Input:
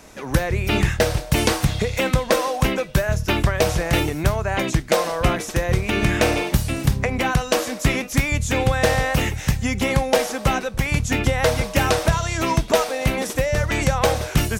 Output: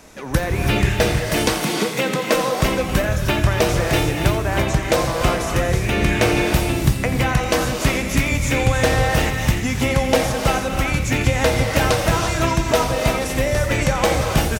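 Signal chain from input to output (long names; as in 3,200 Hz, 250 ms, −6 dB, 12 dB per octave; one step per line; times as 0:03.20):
0:01.27–0:02.33: Butterworth high-pass 160 Hz 36 dB per octave
on a send: single-tap delay 86 ms −14 dB
on the sum: reverb whose tail is shaped and stops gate 370 ms rising, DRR 2.5 dB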